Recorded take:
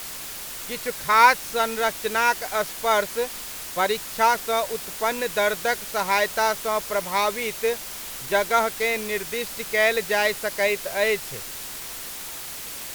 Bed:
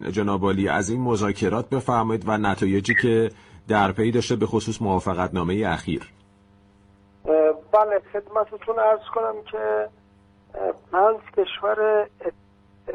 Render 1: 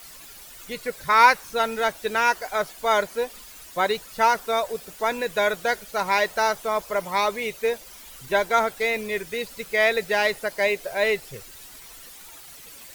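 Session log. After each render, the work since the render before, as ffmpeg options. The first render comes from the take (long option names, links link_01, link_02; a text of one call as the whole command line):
ffmpeg -i in.wav -af "afftdn=noise_reduction=12:noise_floor=-36" out.wav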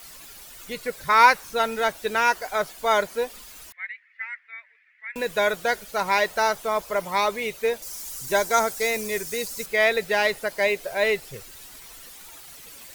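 ffmpeg -i in.wav -filter_complex "[0:a]asettb=1/sr,asplit=3[link_01][link_02][link_03];[link_01]atrim=end=3.724[link_04];[link_02]atrim=start=3.72:end=5.16,asetpts=PTS-STARTPTS,afade=type=in:duration=0.004:curve=qsin,afade=type=out:start_time=1.436:duration=0.004:curve=qsin,asuperpass=centerf=2000:order=4:qfactor=4.2[link_05];[link_03]atrim=start=5.156[link_06];[link_04][link_05]acrossfade=duration=0.004:curve1=hsin:curve2=qsin[link_07];[link_07][link_06]acrossfade=duration=0.004:curve1=qsin:curve2=hsin,asettb=1/sr,asplit=3[link_08][link_09][link_10];[link_08]atrim=end=7.824[link_11];[link_09]atrim=start=7.82:end=9.66,asetpts=PTS-STARTPTS,afade=type=in:duration=0.004:curve=qsin,afade=type=out:start_time=1.836:duration=0.004:curve=qsin,highshelf=frequency=4400:width_type=q:width=1.5:gain=8.5[link_12];[link_10]atrim=start=9.656[link_13];[link_11][link_12]acrossfade=duration=0.004:curve1=hsin:curve2=qsin[link_14];[link_14][link_13]acrossfade=duration=0.004:curve1=qsin:curve2=hsin" out.wav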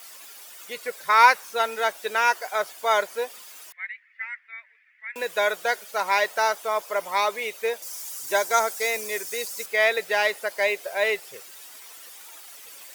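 ffmpeg -i in.wav -af "highpass=450,bandreject=frequency=4100:width=22" out.wav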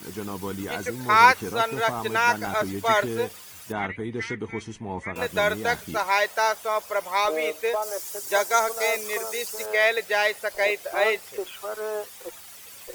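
ffmpeg -i in.wav -i bed.wav -filter_complex "[1:a]volume=-11dB[link_01];[0:a][link_01]amix=inputs=2:normalize=0" out.wav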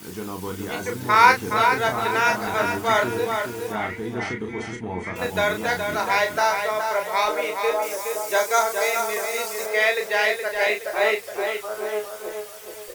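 ffmpeg -i in.wav -filter_complex "[0:a]asplit=2[link_01][link_02];[link_02]adelay=33,volume=-5.5dB[link_03];[link_01][link_03]amix=inputs=2:normalize=0,asplit=2[link_04][link_05];[link_05]adelay=420,lowpass=frequency=4600:poles=1,volume=-5.5dB,asplit=2[link_06][link_07];[link_07]adelay=420,lowpass=frequency=4600:poles=1,volume=0.4,asplit=2[link_08][link_09];[link_09]adelay=420,lowpass=frequency=4600:poles=1,volume=0.4,asplit=2[link_10][link_11];[link_11]adelay=420,lowpass=frequency=4600:poles=1,volume=0.4,asplit=2[link_12][link_13];[link_13]adelay=420,lowpass=frequency=4600:poles=1,volume=0.4[link_14];[link_04][link_06][link_08][link_10][link_12][link_14]amix=inputs=6:normalize=0" out.wav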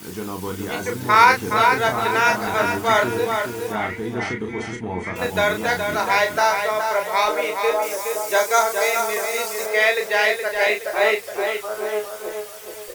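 ffmpeg -i in.wav -af "volume=2.5dB,alimiter=limit=-2dB:level=0:latency=1" out.wav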